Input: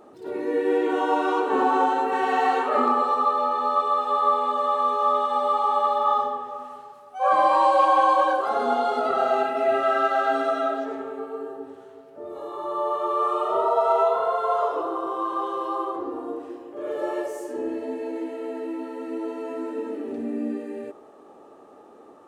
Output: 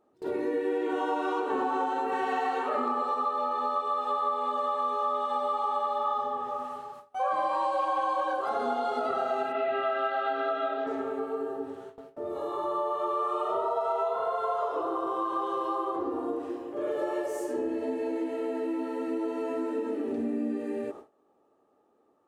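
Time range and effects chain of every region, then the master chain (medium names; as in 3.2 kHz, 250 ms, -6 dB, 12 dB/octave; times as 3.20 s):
9.52–10.87 s: Chebyshev low-pass 3.5 kHz, order 3 + tilt EQ +1.5 dB/octave + flutter echo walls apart 4.7 m, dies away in 0.24 s
whole clip: gate with hold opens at -36 dBFS; peaking EQ 69 Hz +4.5 dB 2.4 oct; compression 4:1, threshold -29 dBFS; trim +1.5 dB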